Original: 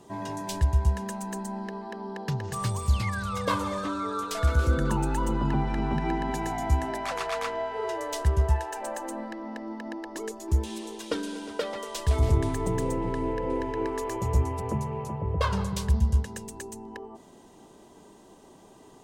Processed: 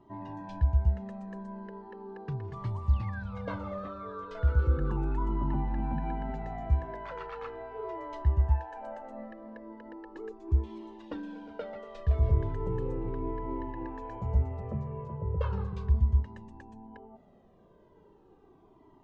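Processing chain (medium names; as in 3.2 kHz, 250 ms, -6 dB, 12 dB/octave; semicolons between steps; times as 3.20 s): tape spacing loss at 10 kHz 42 dB; Shepard-style flanger falling 0.37 Hz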